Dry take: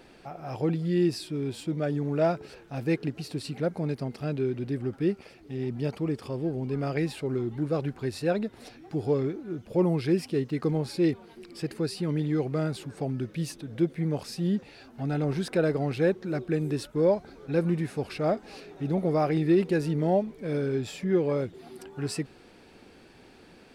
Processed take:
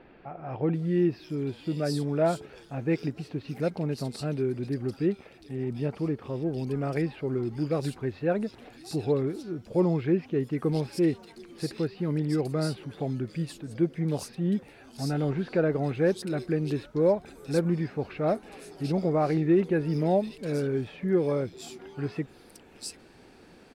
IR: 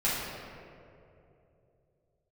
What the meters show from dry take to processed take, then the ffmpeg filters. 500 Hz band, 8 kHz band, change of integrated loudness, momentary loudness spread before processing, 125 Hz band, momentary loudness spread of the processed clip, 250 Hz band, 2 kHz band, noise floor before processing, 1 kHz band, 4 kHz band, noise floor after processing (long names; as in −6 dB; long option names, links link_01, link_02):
0.0 dB, 0.0 dB, 0.0 dB, 10 LU, 0.0 dB, 11 LU, 0.0 dB, −1.0 dB, −54 dBFS, 0.0 dB, −1.5 dB, −54 dBFS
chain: -filter_complex "[0:a]acrossover=split=3000[link_01][link_02];[link_02]adelay=740[link_03];[link_01][link_03]amix=inputs=2:normalize=0"